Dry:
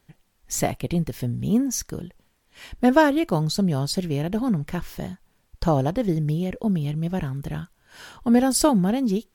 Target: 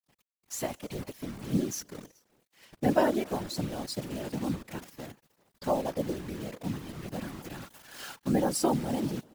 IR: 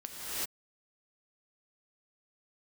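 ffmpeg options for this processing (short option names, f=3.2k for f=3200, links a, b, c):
-filter_complex "[0:a]asettb=1/sr,asplit=3[a][b][c];[a]atrim=end=7.194[d];[b]atrim=start=7.19:end=8.16,asetpts=PTS-STARTPTS,afade=t=in:d=0.004:c=qsin,afade=t=out:st=0.966:d=0.004:c=qsin,aeval=exprs='val(0)+0.5*0.0299*sgn(val(0))':c=same[e];[c]atrim=start=8.156[f];[d][e]acrossfade=d=0.004:c1=hsin:c2=qsin[g];[g][f]acrossfade=d=0.004:c1=qsin:c2=hsin,aecho=1:1:3.6:0.54,asplit=2[h][i];[1:a]atrim=start_sample=2205,adelay=28[j];[i][j]afir=irnorm=-1:irlink=0,volume=-25.5dB[k];[h][k]amix=inputs=2:normalize=0,adynamicequalizer=threshold=0.0178:dfrequency=680:dqfactor=2.2:tfrequency=680:tqfactor=2.2:attack=5:release=100:ratio=0.375:range=2.5:mode=boostabove:tftype=bell,acrusher=bits=6:dc=4:mix=0:aa=0.000001,highpass=110,afftfilt=real='hypot(re,im)*cos(2*PI*random(0))':imag='hypot(re,im)*sin(2*PI*random(1))':win_size=512:overlap=0.75,volume=-5dB"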